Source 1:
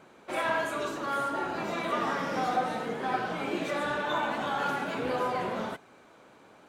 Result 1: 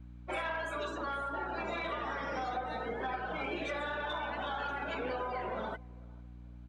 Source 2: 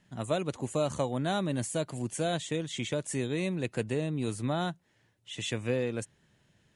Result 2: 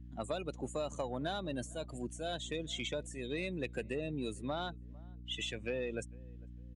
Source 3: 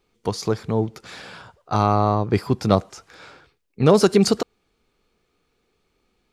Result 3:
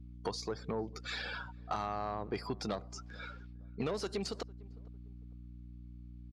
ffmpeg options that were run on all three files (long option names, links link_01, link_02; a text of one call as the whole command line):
ffmpeg -i in.wav -filter_complex "[0:a]aemphasis=mode=production:type=75fm,afftdn=noise_reduction=19:noise_floor=-37,acontrast=89,highpass=frequency=440:poles=1,acompressor=threshold=-28dB:ratio=8,aeval=exprs='val(0)+0.00631*(sin(2*PI*60*n/s)+sin(2*PI*2*60*n/s)/2+sin(2*PI*3*60*n/s)/3+sin(2*PI*4*60*n/s)/4+sin(2*PI*5*60*n/s)/5)':channel_layout=same,adynamicequalizer=threshold=0.00501:dfrequency=1200:dqfactor=2.6:tfrequency=1200:tqfactor=2.6:attack=5:release=100:ratio=0.375:range=1.5:mode=cutabove:tftype=bell,lowpass=3600,asplit=2[link_01][link_02];[link_02]adelay=452,lowpass=frequency=1000:poles=1,volume=-24dB,asplit=2[link_03][link_04];[link_04]adelay=452,lowpass=frequency=1000:poles=1,volume=0.38[link_05];[link_01][link_03][link_05]amix=inputs=3:normalize=0,asoftclip=type=tanh:threshold=-20.5dB,volume=-4dB" out.wav